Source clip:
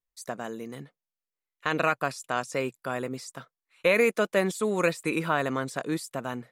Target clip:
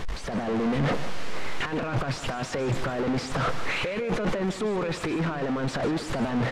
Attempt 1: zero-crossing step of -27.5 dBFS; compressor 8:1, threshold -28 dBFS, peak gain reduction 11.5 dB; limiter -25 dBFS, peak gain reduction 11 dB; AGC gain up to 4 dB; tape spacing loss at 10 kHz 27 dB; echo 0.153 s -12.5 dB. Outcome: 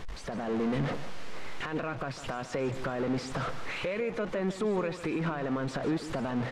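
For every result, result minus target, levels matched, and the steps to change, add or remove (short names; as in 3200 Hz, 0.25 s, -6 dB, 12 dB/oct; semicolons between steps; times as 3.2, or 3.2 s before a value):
compressor: peak gain reduction +11.5 dB; zero-crossing step: distortion -6 dB
remove: compressor 8:1, threshold -28 dBFS, peak gain reduction 11.5 dB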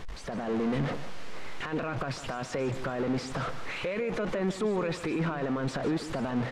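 zero-crossing step: distortion -6 dB
change: zero-crossing step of -18 dBFS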